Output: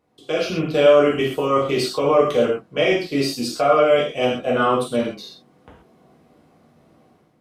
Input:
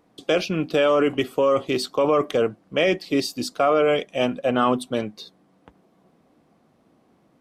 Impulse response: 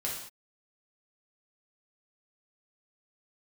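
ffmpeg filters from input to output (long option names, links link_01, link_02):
-filter_complex "[0:a]dynaudnorm=framelen=110:gausssize=7:maxgain=10dB[link_01];[1:a]atrim=start_sample=2205,atrim=end_sample=6174[link_02];[link_01][link_02]afir=irnorm=-1:irlink=0,volume=-7.5dB"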